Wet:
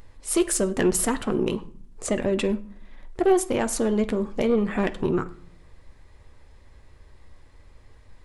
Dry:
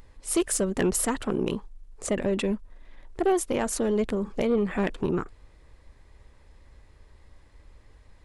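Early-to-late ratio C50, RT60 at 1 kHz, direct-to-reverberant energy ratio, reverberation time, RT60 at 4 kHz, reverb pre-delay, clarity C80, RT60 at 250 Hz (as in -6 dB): 17.0 dB, 0.55 s, 9.0 dB, 0.55 s, 0.35 s, 8 ms, 21.0 dB, 0.90 s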